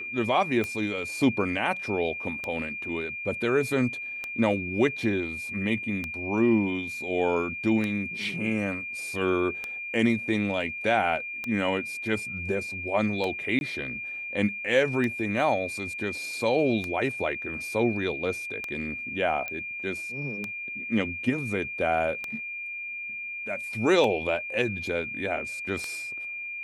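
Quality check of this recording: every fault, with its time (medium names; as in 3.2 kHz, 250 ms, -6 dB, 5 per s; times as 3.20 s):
tick 33 1/3 rpm -17 dBFS
whine 2.4 kHz -33 dBFS
13.59–13.61 s: dropout 21 ms
19.48 s: pop -19 dBFS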